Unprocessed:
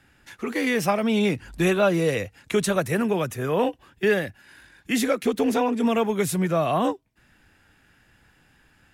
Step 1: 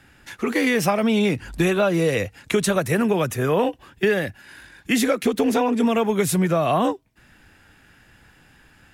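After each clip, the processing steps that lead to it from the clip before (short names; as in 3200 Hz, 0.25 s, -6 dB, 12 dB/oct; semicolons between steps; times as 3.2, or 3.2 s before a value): compressor 5:1, threshold -22 dBFS, peak gain reduction 7 dB; gain +6 dB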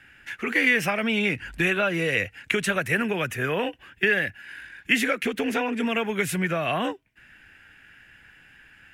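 band shelf 2100 Hz +11.5 dB 1.3 oct; gain -7 dB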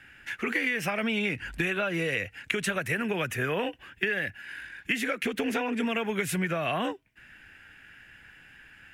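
compressor, threshold -25 dBFS, peak gain reduction 9.5 dB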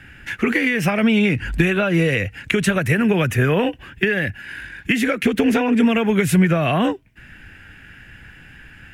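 low shelf 300 Hz +12 dB; gain +7 dB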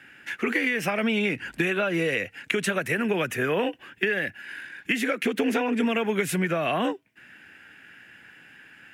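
HPF 270 Hz 12 dB/oct; gain -5 dB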